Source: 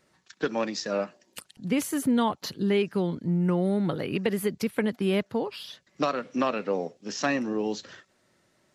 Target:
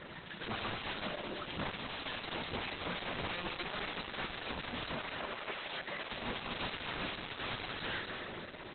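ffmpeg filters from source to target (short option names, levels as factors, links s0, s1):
-filter_complex "[0:a]aeval=exprs='val(0)+0.5*0.0106*sgn(val(0))':c=same,asettb=1/sr,asplit=3[s0][s1][s2];[s0]atrim=end=2.414[s3];[s1]atrim=start=2.41:end=2.88,asetpts=PTS-STARTPTS,afade=t=in:d=0.004:c=qsin,afade=t=out:st=0.466:d=0.004:c=qsin,highpass=42[s4];[s2]atrim=start=2.876[s5];[s3][s4]acrossfade=d=0.004:c1=hsin:c2=qsin[s6];[s6][s5]acrossfade=d=0.004:c1=qsin:c2=hsin,asplit=3[s7][s8][s9];[s7]afade=t=out:st=6.7:d=0.02[s10];[s8]equalizer=f=680:w=3.2:g=14.5,afade=t=in:st=6.7:d=0.02,afade=t=out:st=7.18:d=0.02[s11];[s9]afade=t=in:st=7.18:d=0.02[s12];[s10][s11][s12]amix=inputs=3:normalize=0,bandreject=f=60:t=h:w=6,bandreject=f=120:t=h:w=6,bandreject=f=180:t=h:w=6,bandreject=f=240:t=h:w=6,dynaudnorm=f=290:g=9:m=2.82,alimiter=limit=0.188:level=0:latency=1:release=21,aeval=exprs='(mod(37.6*val(0)+1,2)-1)/37.6':c=same,asplit=3[s13][s14][s15];[s13]afade=t=out:st=4.96:d=0.02[s16];[s14]bass=f=250:g=-12,treble=f=4000:g=-10,afade=t=in:st=4.96:d=0.02,afade=t=out:st=6.09:d=0.02[s17];[s15]afade=t=in:st=6.09:d=0.02[s18];[s16][s17][s18]amix=inputs=3:normalize=0,aresample=32000,aresample=44100,asplit=2[s19][s20];[s20]aecho=0:1:160.3|233.2:0.316|0.447[s21];[s19][s21]amix=inputs=2:normalize=0" -ar 48000 -c:a libopus -b:a 8k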